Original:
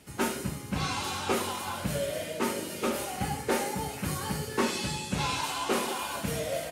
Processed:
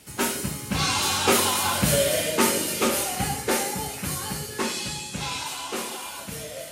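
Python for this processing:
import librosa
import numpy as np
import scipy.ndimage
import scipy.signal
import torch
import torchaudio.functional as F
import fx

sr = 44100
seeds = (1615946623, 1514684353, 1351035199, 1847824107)

y = fx.doppler_pass(x, sr, speed_mps=6, closest_m=5.4, pass_at_s=1.92)
y = fx.high_shelf(y, sr, hz=2600.0, db=8.0)
y = y * 10.0 ** (8.5 / 20.0)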